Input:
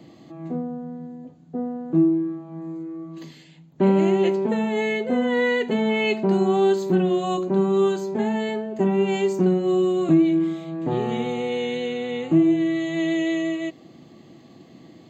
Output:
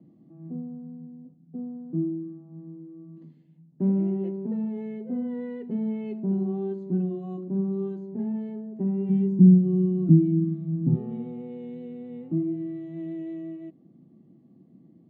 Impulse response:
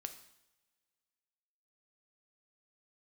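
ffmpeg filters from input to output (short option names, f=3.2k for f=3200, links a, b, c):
-filter_complex "[0:a]bandpass=f=190:t=q:w=2:csg=0,asplit=3[a][b][c];[a]afade=t=out:st=9.09:d=0.02[d];[b]asubboost=boost=8.5:cutoff=190,afade=t=in:st=9.09:d=0.02,afade=t=out:st=10.95:d=0.02[e];[c]afade=t=in:st=10.95:d=0.02[f];[d][e][f]amix=inputs=3:normalize=0,volume=-3dB"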